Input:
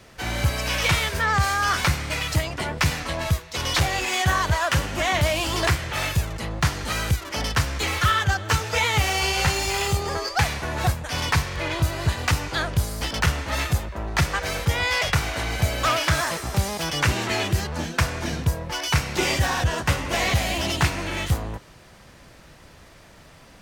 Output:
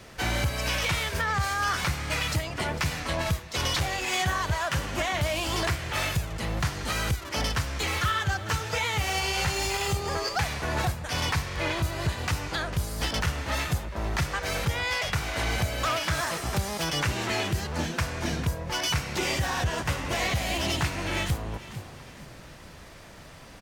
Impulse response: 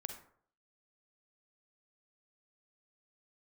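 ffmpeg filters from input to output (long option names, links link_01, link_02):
-filter_complex "[0:a]asplit=2[link_01][link_02];[link_02]asplit=3[link_03][link_04][link_05];[link_03]adelay=449,afreqshift=34,volume=-18dB[link_06];[link_04]adelay=898,afreqshift=68,volume=-27.1dB[link_07];[link_05]adelay=1347,afreqshift=102,volume=-36.2dB[link_08];[link_06][link_07][link_08]amix=inputs=3:normalize=0[link_09];[link_01][link_09]amix=inputs=2:normalize=0,alimiter=limit=-19dB:level=0:latency=1:release=465,asplit=2[link_10][link_11];[1:a]atrim=start_sample=2205[link_12];[link_11][link_12]afir=irnorm=-1:irlink=0,volume=-10.5dB[link_13];[link_10][link_13]amix=inputs=2:normalize=0"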